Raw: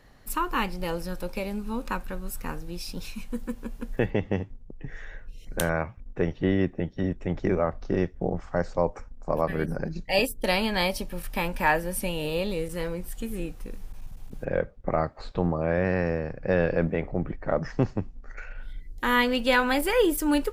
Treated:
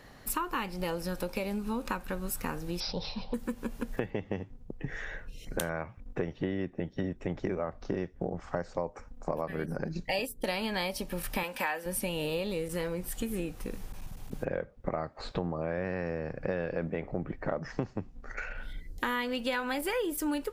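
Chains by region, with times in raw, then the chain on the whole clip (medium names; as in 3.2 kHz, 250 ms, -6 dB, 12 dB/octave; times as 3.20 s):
2.80–3.34 s: FFT filter 170 Hz 0 dB, 280 Hz -8 dB, 510 Hz +7 dB, 890 Hz +9 dB, 1.7 kHz -22 dB, 3.7 kHz +3 dB, 12 kHz -9 dB + careless resampling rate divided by 4×, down none, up filtered
11.43–11.86 s: high-pass 560 Hz 6 dB/octave + peaking EQ 3.2 kHz +2.5 dB + comb 3.9 ms, depth 35%
whole clip: bass shelf 63 Hz -10 dB; compression 6:1, threshold -35 dBFS; trim +5 dB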